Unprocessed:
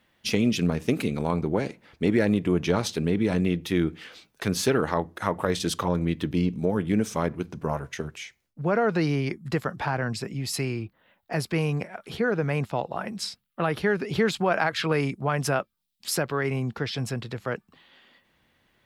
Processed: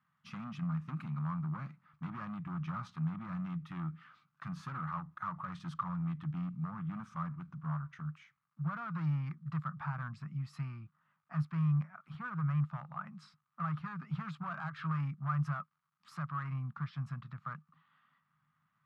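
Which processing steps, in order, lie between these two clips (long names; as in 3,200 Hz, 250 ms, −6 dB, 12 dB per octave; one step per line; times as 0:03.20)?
hard clipping −23 dBFS, distortion −8 dB
surface crackle 430 per second −54 dBFS
pair of resonant band-passes 430 Hz, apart 3 octaves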